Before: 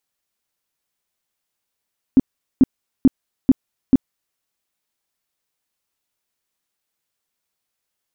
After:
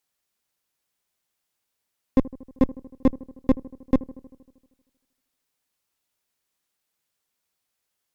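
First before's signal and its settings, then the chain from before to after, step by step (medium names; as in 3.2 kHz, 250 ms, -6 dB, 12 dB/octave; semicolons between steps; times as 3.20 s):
tone bursts 263 Hz, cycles 7, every 0.44 s, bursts 5, -6 dBFS
one-sided clip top -29 dBFS, bottom -7 dBFS; feedback echo behind a low-pass 78 ms, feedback 68%, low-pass 990 Hz, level -19 dB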